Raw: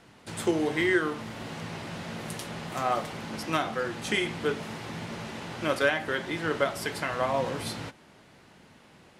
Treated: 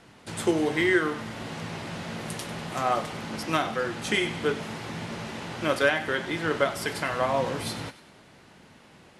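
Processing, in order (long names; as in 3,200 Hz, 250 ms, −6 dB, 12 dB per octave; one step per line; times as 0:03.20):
on a send: delay with a high-pass on its return 97 ms, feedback 51%, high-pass 1,500 Hz, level −14 dB
on the sum: level +2 dB
MP2 128 kbit/s 44,100 Hz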